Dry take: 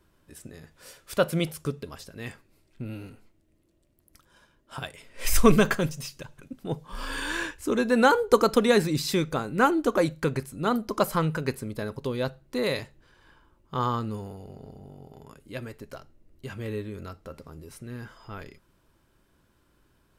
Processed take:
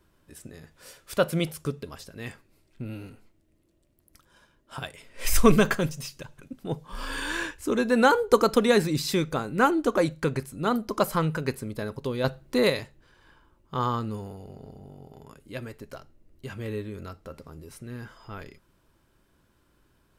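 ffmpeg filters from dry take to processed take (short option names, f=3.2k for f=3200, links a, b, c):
-filter_complex "[0:a]asettb=1/sr,asplit=3[a][b][c];[a]atrim=end=9.714[d];[b]atrim=start=9.71:end=10.38,asetpts=PTS-STARTPTS,afade=t=in:d=0.004:c=qsin,afade=t=out:st=0.666:d=0.004:c=qsin,equalizer=f=13k:w=5.3:g=-9[e];[c]atrim=start=10.376[f];[d][e]acrossfade=d=0.004:c1=hsin:c2=qsin[g];[g][f]acrossfade=d=0.004:c1=qsin:c2=hsin,asettb=1/sr,asplit=3[h][i][j];[h]atrim=end=12.244[k];[i]atrim=start=12.24:end=12.7,asetpts=PTS-STARTPTS,afade=t=in:d=0.004:c=qsin,afade=t=out:st=0.456:d=0.004:c=qsin,acontrast=33[l];[j]atrim=start=12.696[m];[k][l]acrossfade=d=0.004:c1=hsin:c2=qsin[n];[n][m]acrossfade=d=0.004:c1=qsin:c2=hsin"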